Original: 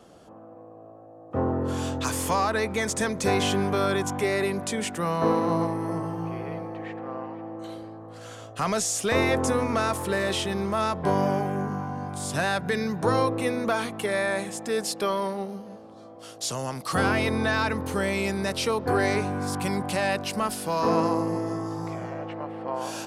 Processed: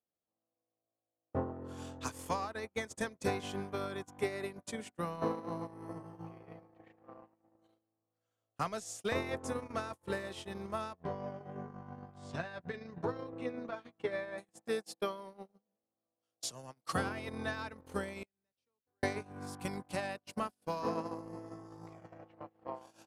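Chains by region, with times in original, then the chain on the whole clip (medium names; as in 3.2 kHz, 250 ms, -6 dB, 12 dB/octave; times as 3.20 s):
10.93–14.38 s: compression 2:1, threshold -26 dBFS + distance through air 140 m + doubling 12 ms -4.5 dB
18.23–19.03 s: expander -21 dBFS + compression 4:1, threshold -41 dBFS
whole clip: compression 6:1, threshold -32 dBFS; gate -32 dBFS, range -50 dB; trim +4.5 dB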